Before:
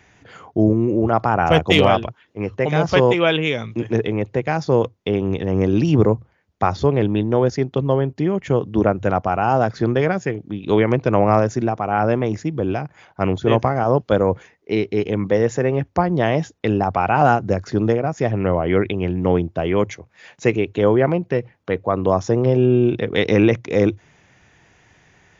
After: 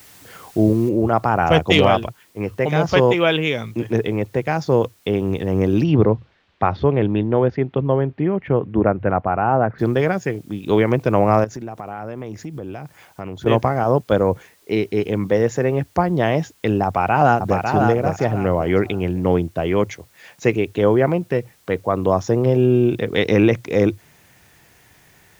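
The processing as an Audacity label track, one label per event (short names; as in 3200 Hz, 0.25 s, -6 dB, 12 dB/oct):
0.890000	0.890000	noise floor step -47 dB -57 dB
5.830000	9.780000	LPF 4200 Hz -> 2000 Hz 24 dB/oct
11.440000	13.460000	compressor 4:1, threshold -28 dBFS
16.850000	17.690000	echo throw 0.55 s, feedback 25%, level -4.5 dB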